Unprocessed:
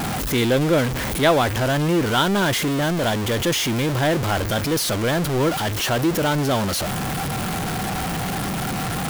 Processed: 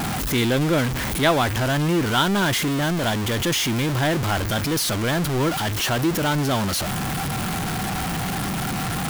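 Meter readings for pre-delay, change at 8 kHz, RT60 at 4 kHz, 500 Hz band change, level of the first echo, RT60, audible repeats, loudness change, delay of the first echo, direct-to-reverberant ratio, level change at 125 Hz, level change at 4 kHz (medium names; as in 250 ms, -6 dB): no reverb, 0.0 dB, no reverb, -3.5 dB, no echo, no reverb, no echo, -1.0 dB, no echo, no reverb, 0.0 dB, 0.0 dB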